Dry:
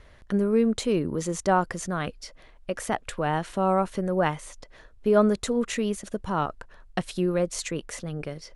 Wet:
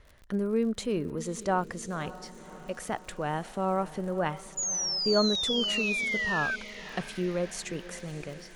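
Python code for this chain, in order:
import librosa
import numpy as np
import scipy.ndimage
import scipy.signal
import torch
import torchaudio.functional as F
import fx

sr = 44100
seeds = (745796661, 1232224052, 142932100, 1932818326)

y = fx.spec_paint(x, sr, seeds[0], shape='fall', start_s=4.57, length_s=1.99, low_hz=1500.0, high_hz=7000.0, level_db=-25.0)
y = fx.dmg_crackle(y, sr, seeds[1], per_s=68.0, level_db=-37.0)
y = fx.echo_diffused(y, sr, ms=574, feedback_pct=61, wet_db=-16)
y = F.gain(torch.from_numpy(y), -5.5).numpy()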